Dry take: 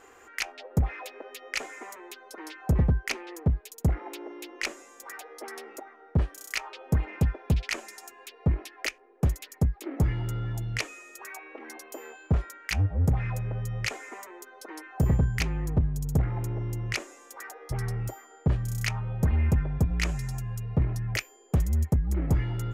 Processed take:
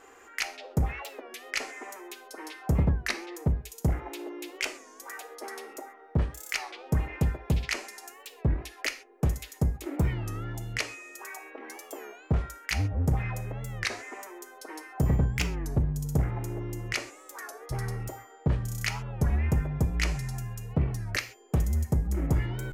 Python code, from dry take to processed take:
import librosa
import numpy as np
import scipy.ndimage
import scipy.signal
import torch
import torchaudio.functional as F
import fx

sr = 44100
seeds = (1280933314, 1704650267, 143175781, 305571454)

y = fx.low_shelf(x, sr, hz=140.0, db=-3.0)
y = fx.rev_gated(y, sr, seeds[0], gate_ms=160, shape='falling', drr_db=8.0)
y = fx.record_warp(y, sr, rpm=33.33, depth_cents=160.0)